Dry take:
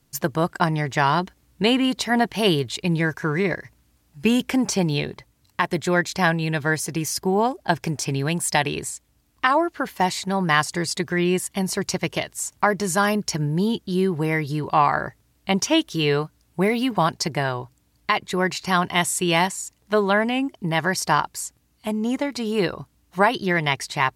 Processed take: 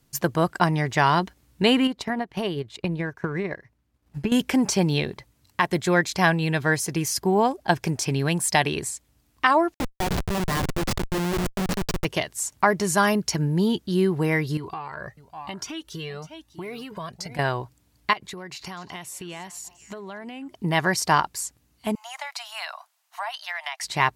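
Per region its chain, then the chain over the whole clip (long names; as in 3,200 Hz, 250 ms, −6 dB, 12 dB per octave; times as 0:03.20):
0:01.87–0:04.32: high-shelf EQ 3,500 Hz −11 dB + transient designer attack +12 dB, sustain −10 dB + downward compressor 4 to 1, threshold −24 dBFS
0:09.74–0:12.05: high-pass filter 81 Hz + mains-hum notches 60/120/180/240/300/360/420/480/540 Hz + comparator with hysteresis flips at −21.5 dBFS
0:14.57–0:17.39: single-tap delay 600 ms −18 dB + downward compressor, threshold −25 dBFS + flanger whose copies keep moving one way rising 1 Hz
0:18.13–0:20.55: dynamic equaliser 8,500 Hz, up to −7 dB, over −41 dBFS, Q 2.2 + downward compressor 12 to 1, threshold −33 dBFS + echo through a band-pass that steps 248 ms, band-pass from 5,500 Hz, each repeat −1.4 octaves, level −12 dB
0:21.95–0:23.83: Butterworth high-pass 640 Hz 96 dB per octave + downward compressor, threshold −27 dBFS
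whole clip: no processing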